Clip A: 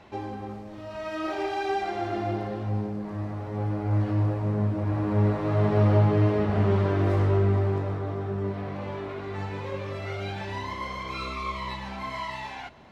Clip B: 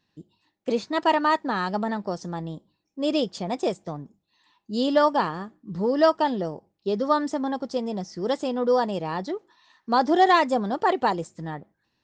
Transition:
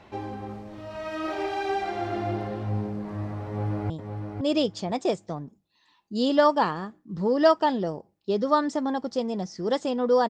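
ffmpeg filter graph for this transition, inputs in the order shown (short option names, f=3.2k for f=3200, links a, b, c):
-filter_complex "[0:a]apad=whole_dur=10.29,atrim=end=10.29,atrim=end=3.902[a];[1:a]atrim=start=2.478:end=8.87[b];[a][b]acrossfade=d=0.004:c1=hsin:c2=hsin,asplit=2[c][d];[d]afade=t=in:st=3.47:d=0.01,afade=t=out:st=3.9:d=0.01,aecho=0:1:510|1020|1530:0.501187|0.0751781|0.0112767[e];[c][e]amix=inputs=2:normalize=0"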